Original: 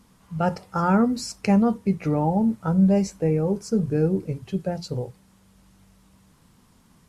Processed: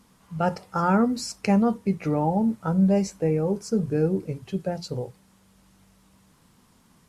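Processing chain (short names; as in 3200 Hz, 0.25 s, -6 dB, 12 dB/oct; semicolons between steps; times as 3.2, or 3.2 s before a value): low shelf 150 Hz -5.5 dB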